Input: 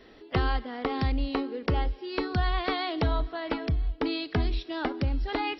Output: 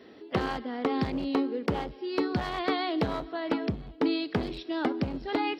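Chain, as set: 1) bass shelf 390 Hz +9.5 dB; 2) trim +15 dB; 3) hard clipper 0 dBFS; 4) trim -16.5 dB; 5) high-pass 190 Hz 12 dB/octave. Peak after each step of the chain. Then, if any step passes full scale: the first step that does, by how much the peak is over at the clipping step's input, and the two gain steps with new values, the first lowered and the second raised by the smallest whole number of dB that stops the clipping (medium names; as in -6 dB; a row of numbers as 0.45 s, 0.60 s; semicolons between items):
-6.5 dBFS, +8.5 dBFS, 0.0 dBFS, -16.5 dBFS, -13.0 dBFS; step 2, 8.5 dB; step 2 +6 dB, step 4 -7.5 dB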